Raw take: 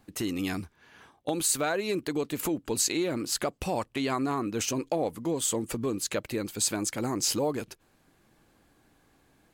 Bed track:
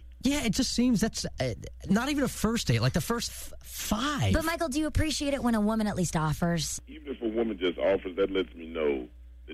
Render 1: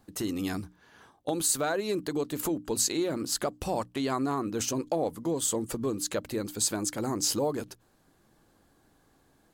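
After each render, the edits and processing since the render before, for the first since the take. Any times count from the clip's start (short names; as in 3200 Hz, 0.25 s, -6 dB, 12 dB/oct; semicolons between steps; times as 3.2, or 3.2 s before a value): bell 2400 Hz -7 dB 0.69 oct; notches 60/120/180/240/300 Hz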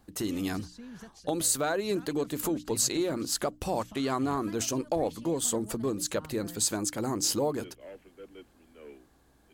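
add bed track -21 dB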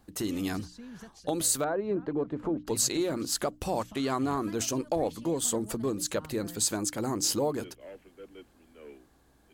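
1.64–2.67 LPF 1200 Hz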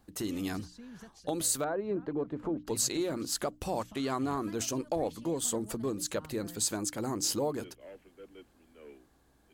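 gain -3 dB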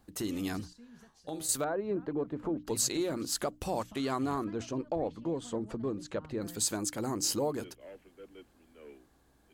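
0.73–1.49 resonator 79 Hz, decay 0.4 s, mix 70%; 4.44–6.42 tape spacing loss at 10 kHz 23 dB; 7.11–7.51 notch 3500 Hz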